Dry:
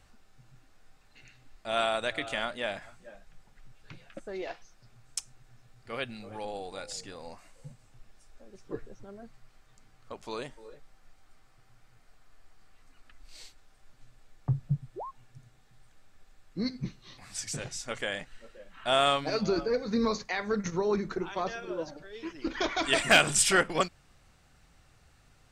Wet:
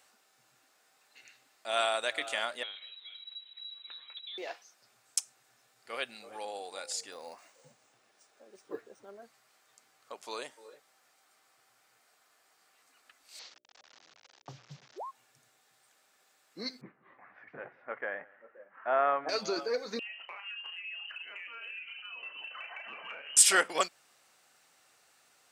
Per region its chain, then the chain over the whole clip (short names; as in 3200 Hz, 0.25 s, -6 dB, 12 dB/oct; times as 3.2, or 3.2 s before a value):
2.63–4.38 dynamic EQ 1800 Hz, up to -5 dB, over -51 dBFS, Q 0.99 + compressor 2:1, threshold -46 dBFS + inverted band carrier 3900 Hz
7.12–9.22 bell 310 Hz +3 dB 2.2 oct + decimation joined by straight lines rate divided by 3×
13.39–14.98 delta modulation 32 kbps, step -48 dBFS + notches 60/120/180/240/300/360/420/480/540/600 Hz
16.81–19.29 steep low-pass 1900 Hz + echo 0.174 s -23.5 dB
19.99–23.37 inverted band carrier 3000 Hz + compressor 16:1, threshold -40 dBFS + doubler 34 ms -9 dB
whole clip: HPF 460 Hz 12 dB/oct; high shelf 6800 Hz +9.5 dB; gain -1 dB